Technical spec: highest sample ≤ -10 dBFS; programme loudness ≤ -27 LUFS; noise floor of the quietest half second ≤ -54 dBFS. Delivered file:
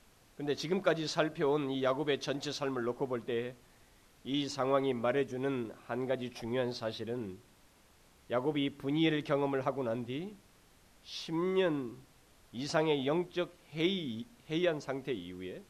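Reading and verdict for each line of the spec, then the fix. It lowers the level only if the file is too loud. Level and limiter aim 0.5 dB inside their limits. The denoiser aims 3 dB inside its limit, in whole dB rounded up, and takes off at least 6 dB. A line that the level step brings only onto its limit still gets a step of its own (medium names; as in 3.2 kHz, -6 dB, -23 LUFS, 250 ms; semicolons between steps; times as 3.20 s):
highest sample -15.5 dBFS: pass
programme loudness -34.5 LUFS: pass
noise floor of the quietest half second -63 dBFS: pass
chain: none needed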